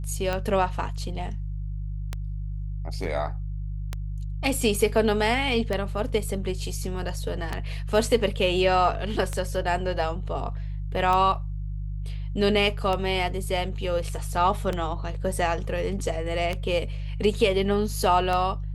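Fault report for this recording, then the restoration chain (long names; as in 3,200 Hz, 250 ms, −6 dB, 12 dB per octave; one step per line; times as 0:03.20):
mains hum 50 Hz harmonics 3 −31 dBFS
scratch tick 33 1/3 rpm −14 dBFS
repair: click removal
hum removal 50 Hz, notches 3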